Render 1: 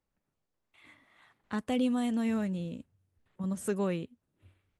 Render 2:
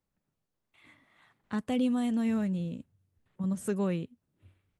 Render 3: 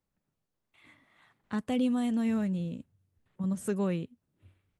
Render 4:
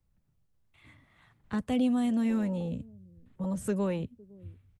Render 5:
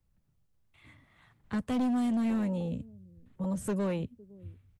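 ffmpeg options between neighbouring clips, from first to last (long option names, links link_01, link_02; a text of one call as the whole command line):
ffmpeg -i in.wav -af "equalizer=frequency=150:width=0.93:gain=5,volume=-1.5dB" out.wav
ffmpeg -i in.wav -af anull out.wav
ffmpeg -i in.wav -filter_complex "[0:a]acrossover=split=130|560|1700[link_01][link_02][link_03][link_04];[link_01]aeval=exprs='0.0141*sin(PI/2*3.98*val(0)/0.0141)':channel_layout=same[link_05];[link_02]aecho=1:1:509:0.0891[link_06];[link_05][link_06][link_03][link_04]amix=inputs=4:normalize=0" out.wav
ffmpeg -i in.wav -af "asoftclip=type=hard:threshold=-26dB" out.wav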